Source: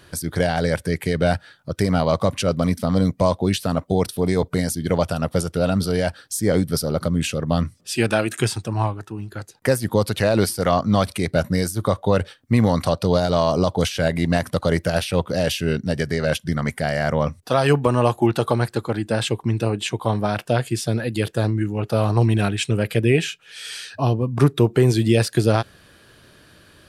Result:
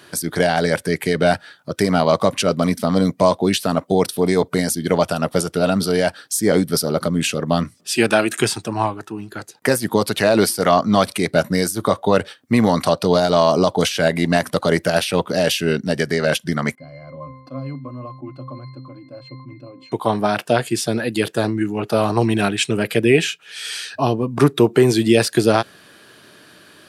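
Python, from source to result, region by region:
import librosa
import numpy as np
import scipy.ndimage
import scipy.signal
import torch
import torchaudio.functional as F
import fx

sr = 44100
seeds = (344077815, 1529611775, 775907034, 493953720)

y = fx.chain(x, sr, fx.octave_resonator(note='C', decay_s=0.31),
    fx.sustainer(db_per_s=72.0), at=(16.75, 19.92))
y = scipy.signal.sosfilt(scipy.signal.butter(2, 200.0, 'highpass', fs=sr, output='sos'), y)
y = fx.notch(y, sr, hz=520.0, q=12.0)
y = F.gain(torch.from_numpy(y), 5.0).numpy()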